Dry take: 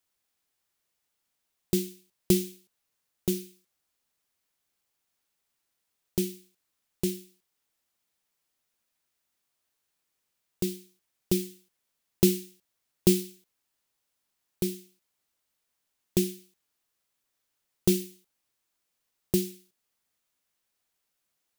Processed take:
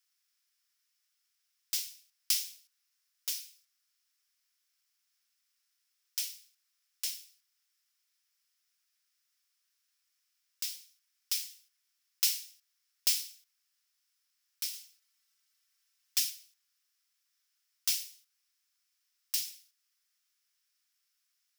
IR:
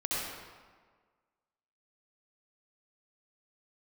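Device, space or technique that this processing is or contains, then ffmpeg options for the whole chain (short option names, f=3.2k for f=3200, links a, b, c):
headphones lying on a table: -filter_complex "[0:a]asettb=1/sr,asplit=3[a][b][c];[a]atrim=end=14.734[d];[b]atrim=start=14.73:end=16.3,asetpts=PTS-STARTPTS,afade=t=in:d=0.004:c=qsin,afade=t=out:st=1.566:d=0.004:c=qsin,aecho=1:1:4.5:0.88,atrim=end_sample=69237[e];[c]atrim=start=16.296[f];[d][e]acrossfade=d=0.004:c1=hsin:c2=qsin[g];[g][f]acrossfade=d=0.004:c1=qsin:c2=hsin,highpass=f=1.3k:w=0.5412,highpass=f=1.3k:w=1.3066,equalizer=f=5.3k:t=o:w=0.3:g=9"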